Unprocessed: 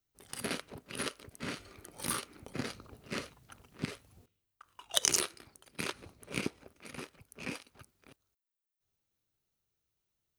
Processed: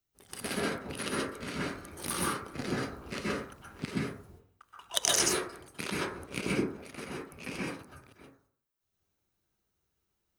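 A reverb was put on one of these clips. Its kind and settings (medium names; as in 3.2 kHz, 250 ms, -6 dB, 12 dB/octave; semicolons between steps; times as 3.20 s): plate-style reverb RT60 0.54 s, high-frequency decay 0.3×, pre-delay 115 ms, DRR -6 dB; trim -1 dB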